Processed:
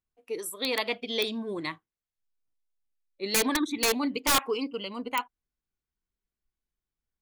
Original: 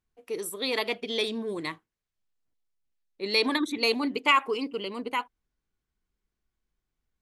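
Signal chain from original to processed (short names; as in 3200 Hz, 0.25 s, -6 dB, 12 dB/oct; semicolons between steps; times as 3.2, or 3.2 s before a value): spectral noise reduction 8 dB; wrapped overs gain 16.5 dB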